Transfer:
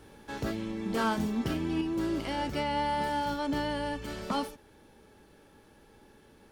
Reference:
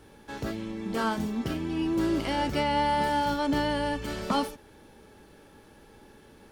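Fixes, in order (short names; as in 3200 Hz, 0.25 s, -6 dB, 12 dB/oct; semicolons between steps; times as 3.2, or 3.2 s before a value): clip repair -22 dBFS; gain 0 dB, from 1.81 s +4.5 dB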